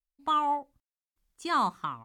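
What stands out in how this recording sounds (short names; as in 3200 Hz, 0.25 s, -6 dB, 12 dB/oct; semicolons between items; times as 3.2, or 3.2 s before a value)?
noise floor -96 dBFS; spectral tilt -2.0 dB/oct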